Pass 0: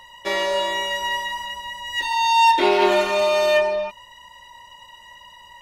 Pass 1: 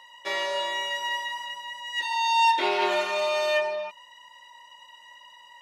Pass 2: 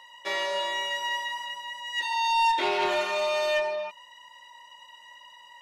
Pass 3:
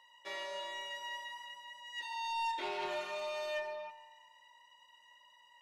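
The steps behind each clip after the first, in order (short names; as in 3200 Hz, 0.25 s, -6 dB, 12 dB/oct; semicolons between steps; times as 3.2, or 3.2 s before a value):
weighting filter A; gain -5.5 dB
soft clip -17.5 dBFS, distortion -18 dB
resonator 150 Hz, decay 1.4 s, mix 70%; gain -3 dB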